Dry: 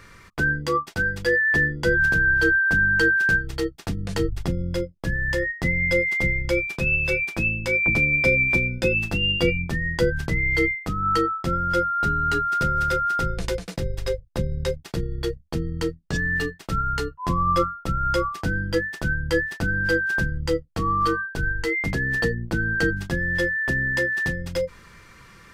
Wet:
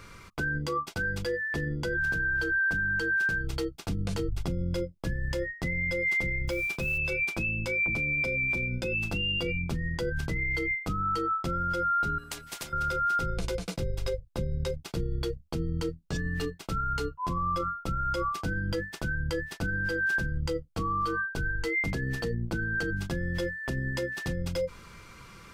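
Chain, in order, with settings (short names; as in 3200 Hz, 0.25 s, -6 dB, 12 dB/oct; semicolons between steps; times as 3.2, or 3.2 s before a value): notch 1800 Hz, Q 5.7; 6.47–6.98 modulation noise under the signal 25 dB; limiter -22.5 dBFS, peak gain reduction 14.5 dB; 12.18–12.73 spectral compressor 4:1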